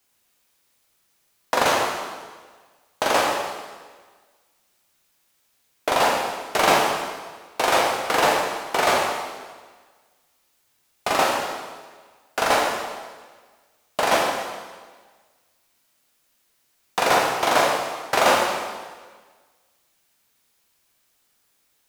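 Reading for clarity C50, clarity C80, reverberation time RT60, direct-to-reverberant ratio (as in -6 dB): 2.0 dB, 3.5 dB, 1.5 s, -1.5 dB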